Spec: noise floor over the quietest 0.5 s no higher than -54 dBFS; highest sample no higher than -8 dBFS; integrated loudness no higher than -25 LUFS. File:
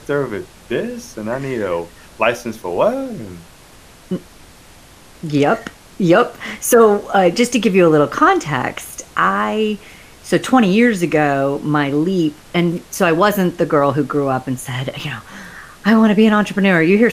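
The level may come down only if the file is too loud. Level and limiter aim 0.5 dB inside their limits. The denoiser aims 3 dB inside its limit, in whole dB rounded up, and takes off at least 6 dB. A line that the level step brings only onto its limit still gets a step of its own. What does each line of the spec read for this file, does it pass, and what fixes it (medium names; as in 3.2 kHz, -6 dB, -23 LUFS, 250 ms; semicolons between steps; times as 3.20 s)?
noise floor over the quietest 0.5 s -43 dBFS: fail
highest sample -1.5 dBFS: fail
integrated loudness -16.0 LUFS: fail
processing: noise reduction 6 dB, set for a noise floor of -43 dBFS; trim -9.5 dB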